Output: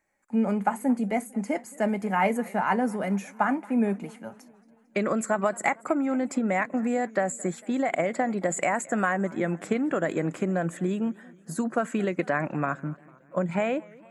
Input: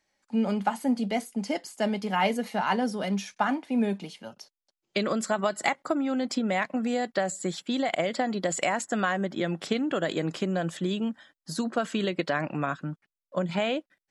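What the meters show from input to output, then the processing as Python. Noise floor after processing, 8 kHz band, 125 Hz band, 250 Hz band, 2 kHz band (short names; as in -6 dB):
-57 dBFS, 0.0 dB, +1.5 dB, +1.5 dB, +1.0 dB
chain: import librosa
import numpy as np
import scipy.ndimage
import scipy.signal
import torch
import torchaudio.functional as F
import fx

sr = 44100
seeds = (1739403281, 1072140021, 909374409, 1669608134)

y = fx.band_shelf(x, sr, hz=4100.0, db=-15.5, octaves=1.2)
y = fx.echo_warbled(y, sr, ms=226, feedback_pct=59, rate_hz=2.8, cents=168, wet_db=-23.5)
y = y * 10.0 ** (1.5 / 20.0)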